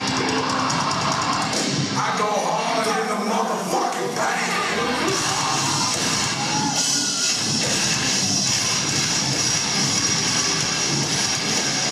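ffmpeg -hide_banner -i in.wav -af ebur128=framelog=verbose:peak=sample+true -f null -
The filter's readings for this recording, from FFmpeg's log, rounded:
Integrated loudness:
  I:         -19.8 LUFS
  Threshold: -29.8 LUFS
Loudness range:
  LRA:         3.2 LU
  Threshold: -39.7 LUFS
  LRA low:   -21.6 LUFS
  LRA high:  -18.4 LUFS
Sample peak:
  Peak:       -8.2 dBFS
True peak:
  Peak:       -8.0 dBFS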